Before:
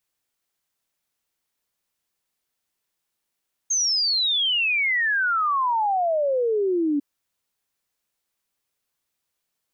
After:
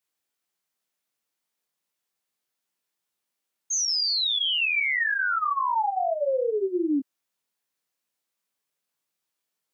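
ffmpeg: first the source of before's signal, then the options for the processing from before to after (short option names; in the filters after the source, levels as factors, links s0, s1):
-f lavfi -i "aevalsrc='0.112*clip(min(t,3.3-t)/0.01,0,1)*sin(2*PI*6500*3.3/log(280/6500)*(exp(log(280/6500)*t/3.3)-1))':d=3.3:s=44100"
-af "highpass=140,flanger=delay=16.5:depth=6.4:speed=2.6"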